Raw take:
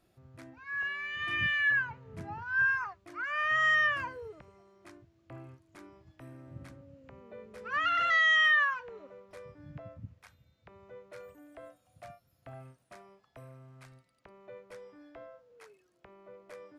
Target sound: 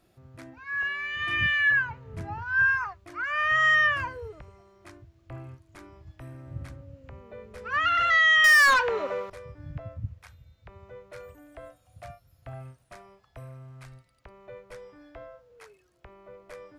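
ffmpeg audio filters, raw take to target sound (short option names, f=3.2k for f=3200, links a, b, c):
-filter_complex "[0:a]asubboost=boost=5.5:cutoff=87,asettb=1/sr,asplit=3[a][b][c];[a]atrim=end=8.444[d];[b]atrim=start=8.44:end=9.3,asetpts=PTS-STARTPTS,afade=t=in:d=0.004:c=qsin,afade=t=out:st=0.856:d=0.004:c=qsin,asplit=2[e][f];[f]highpass=f=720:p=1,volume=27dB,asoftclip=type=tanh:threshold=-17.5dB[g];[e][g]amix=inputs=2:normalize=0,lowpass=f=5.5k:p=1,volume=-6dB[h];[c]atrim=start=9.296[i];[d][h]acrossfade=d=0.004:c1=hsin:c2=qsin[j];[j][i]acrossfade=d=0.004:c1=qsin:c2=hsin,volume=5dB"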